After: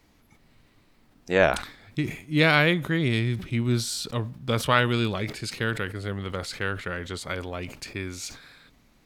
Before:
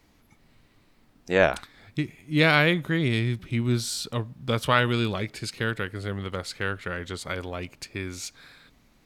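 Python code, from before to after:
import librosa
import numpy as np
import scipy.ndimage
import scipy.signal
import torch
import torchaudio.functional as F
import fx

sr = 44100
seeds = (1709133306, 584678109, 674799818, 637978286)

y = fx.sustainer(x, sr, db_per_s=110.0)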